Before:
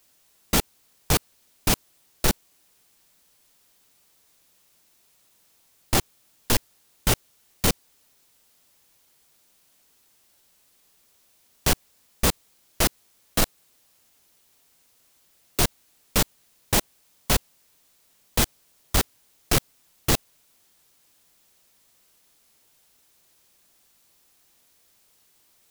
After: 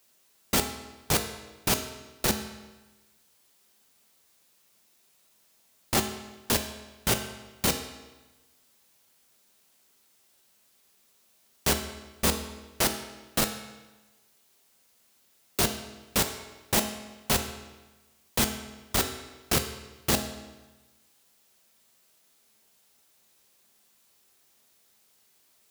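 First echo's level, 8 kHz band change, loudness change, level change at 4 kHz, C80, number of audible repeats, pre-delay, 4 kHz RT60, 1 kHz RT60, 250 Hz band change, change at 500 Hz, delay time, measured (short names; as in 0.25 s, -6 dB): none, -2.5 dB, -3.5 dB, -2.0 dB, 10.5 dB, none, 5 ms, 1.0 s, 1.2 s, -2.0 dB, -2.0 dB, none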